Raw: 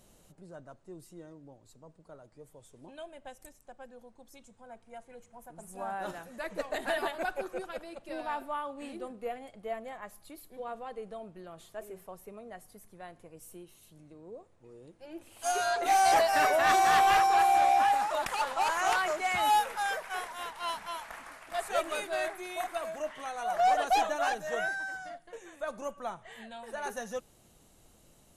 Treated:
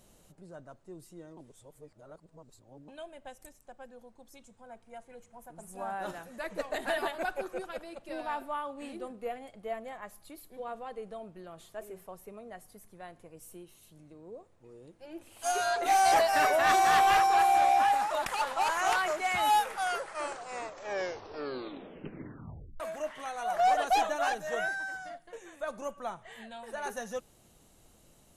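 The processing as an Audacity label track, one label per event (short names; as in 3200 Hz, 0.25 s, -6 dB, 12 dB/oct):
1.370000	2.880000	reverse
19.590000	19.590000	tape stop 3.21 s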